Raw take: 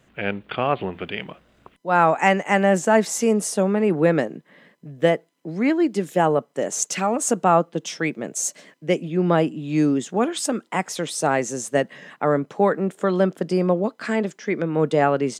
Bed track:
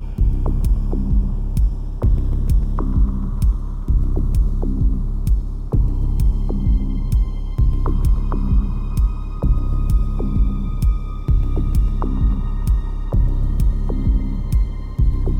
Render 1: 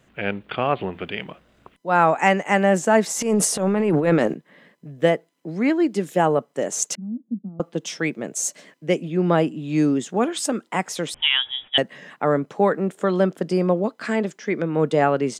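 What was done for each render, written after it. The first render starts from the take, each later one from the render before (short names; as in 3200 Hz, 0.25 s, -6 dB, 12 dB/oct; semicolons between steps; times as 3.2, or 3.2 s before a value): 3.1–4.34 transient shaper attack -11 dB, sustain +10 dB; 6.95–7.6 Butterworth band-pass 220 Hz, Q 3.9; 11.14–11.78 inverted band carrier 3600 Hz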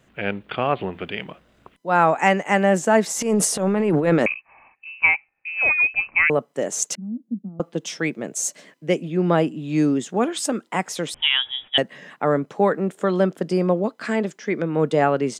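4.26–6.3 inverted band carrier 2800 Hz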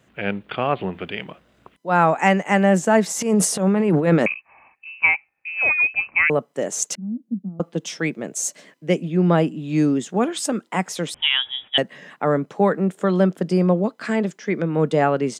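HPF 52 Hz; dynamic EQ 180 Hz, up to +5 dB, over -35 dBFS, Q 2.9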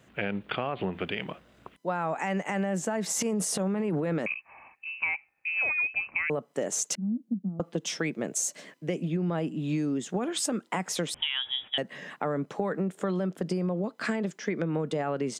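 limiter -14 dBFS, peak gain reduction 12 dB; compressor, threshold -26 dBFS, peak gain reduction 9 dB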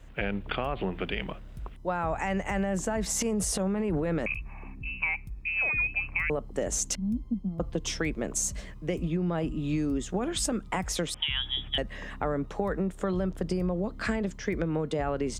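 add bed track -23.5 dB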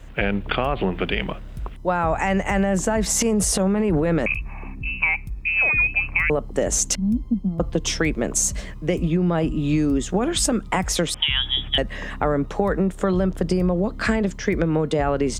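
gain +8.5 dB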